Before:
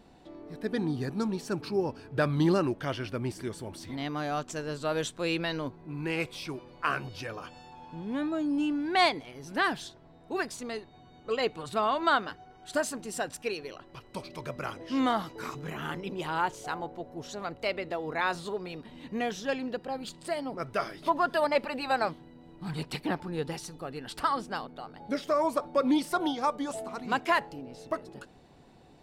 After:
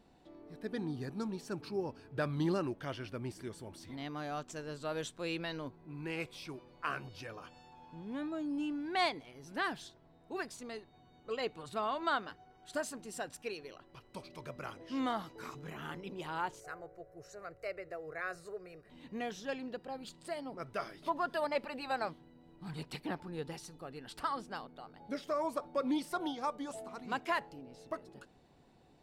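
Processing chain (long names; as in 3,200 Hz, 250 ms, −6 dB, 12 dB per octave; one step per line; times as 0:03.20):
0:16.60–0:18.90: phaser with its sweep stopped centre 910 Hz, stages 6
level −8 dB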